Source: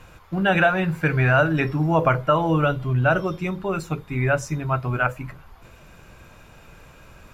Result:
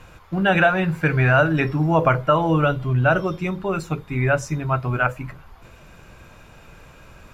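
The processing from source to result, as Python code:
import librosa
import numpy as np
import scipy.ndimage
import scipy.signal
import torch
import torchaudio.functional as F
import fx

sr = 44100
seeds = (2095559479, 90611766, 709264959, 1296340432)

y = fx.high_shelf(x, sr, hz=11000.0, db=-4.5)
y = F.gain(torch.from_numpy(y), 1.5).numpy()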